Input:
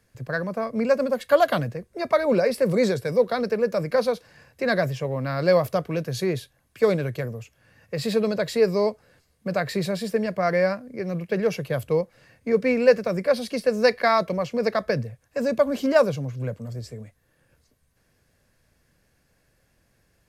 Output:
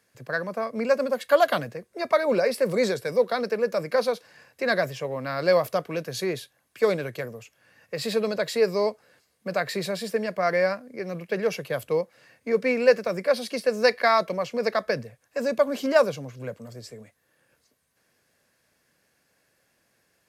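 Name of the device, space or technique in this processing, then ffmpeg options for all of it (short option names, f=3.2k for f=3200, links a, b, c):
filter by subtraction: -filter_complex "[0:a]asplit=2[a][b];[b]lowpass=230,volume=-1[c];[a][c]amix=inputs=2:normalize=0,lowshelf=f=390:g=-10.5,volume=1dB"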